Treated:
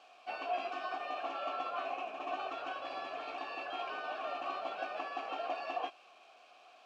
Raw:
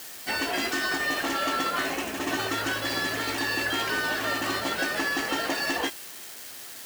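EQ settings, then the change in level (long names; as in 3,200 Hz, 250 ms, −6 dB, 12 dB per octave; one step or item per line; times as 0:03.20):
formant filter a
band-pass filter 130–5,500 Hz
+1.0 dB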